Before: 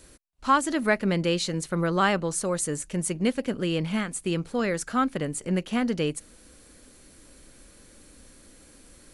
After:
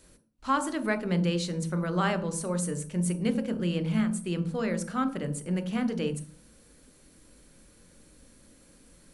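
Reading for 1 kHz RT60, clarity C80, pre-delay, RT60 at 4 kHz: 0.45 s, 16.5 dB, 22 ms, 0.40 s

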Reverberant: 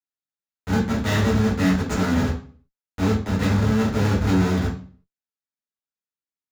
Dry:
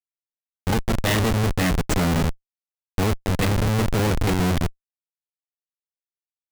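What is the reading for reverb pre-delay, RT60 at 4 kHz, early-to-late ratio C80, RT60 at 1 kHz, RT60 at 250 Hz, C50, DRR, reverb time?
3 ms, 0.35 s, 13.0 dB, 0.40 s, 0.50 s, 7.5 dB, -5.0 dB, 0.45 s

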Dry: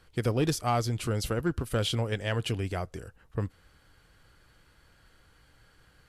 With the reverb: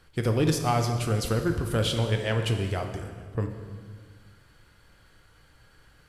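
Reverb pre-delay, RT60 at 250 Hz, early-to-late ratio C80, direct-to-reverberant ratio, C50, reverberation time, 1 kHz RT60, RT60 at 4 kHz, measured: 7 ms, 2.1 s, 8.0 dB, 4.5 dB, 6.5 dB, 1.7 s, 1.6 s, 1.4 s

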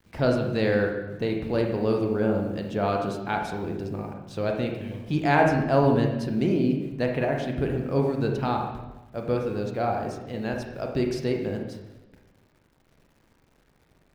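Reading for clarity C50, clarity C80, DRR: 4.0 dB, 7.0 dB, 1.5 dB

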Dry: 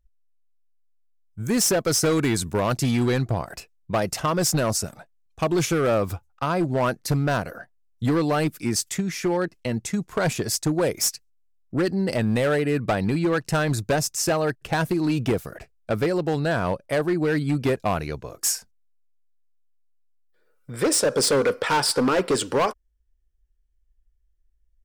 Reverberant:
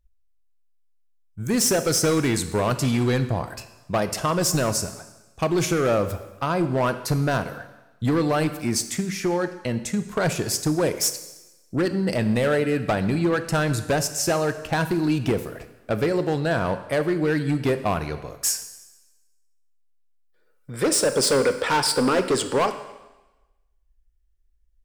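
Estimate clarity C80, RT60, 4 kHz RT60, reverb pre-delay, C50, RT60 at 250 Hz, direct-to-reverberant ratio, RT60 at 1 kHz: 13.5 dB, 1.0 s, 1.1 s, 18 ms, 11.5 dB, 1.1 s, 10.0 dB, 1.1 s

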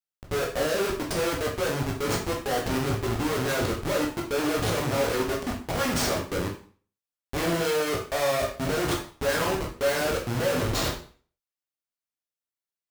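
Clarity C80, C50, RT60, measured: 11.5 dB, 7.0 dB, 0.45 s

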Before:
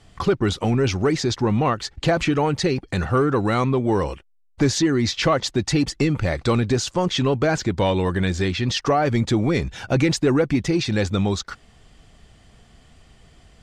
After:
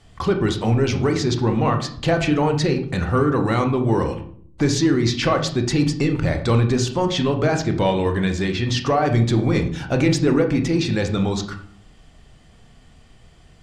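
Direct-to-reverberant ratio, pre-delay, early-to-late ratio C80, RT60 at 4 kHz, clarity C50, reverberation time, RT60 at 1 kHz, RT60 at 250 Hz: 5.0 dB, 24 ms, 14.0 dB, 0.40 s, 9.5 dB, 0.55 s, 0.50 s, 0.85 s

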